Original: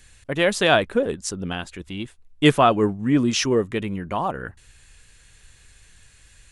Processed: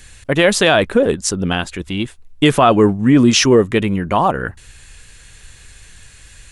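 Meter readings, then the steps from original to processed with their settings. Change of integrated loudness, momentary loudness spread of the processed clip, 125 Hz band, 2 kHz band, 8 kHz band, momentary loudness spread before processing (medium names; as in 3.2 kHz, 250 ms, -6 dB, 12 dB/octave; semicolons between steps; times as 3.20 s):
+6.5 dB, 13 LU, +7.5 dB, +6.0 dB, +9.5 dB, 17 LU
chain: loudness maximiser +11.5 dB; trim -1.5 dB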